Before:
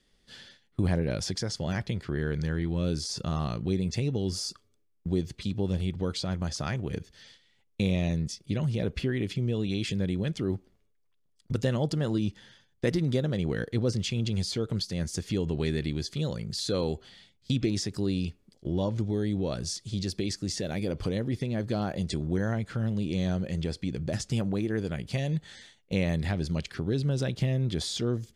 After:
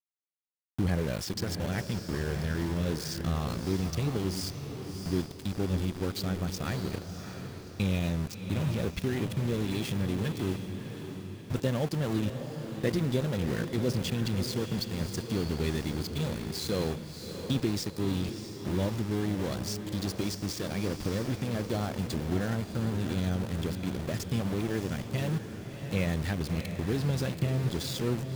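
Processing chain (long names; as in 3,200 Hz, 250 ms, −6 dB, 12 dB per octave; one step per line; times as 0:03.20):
spectral magnitudes quantised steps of 15 dB
centre clipping without the shift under −33.5 dBFS
feedback delay with all-pass diffusion 650 ms, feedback 47%, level −8 dB
level −1.5 dB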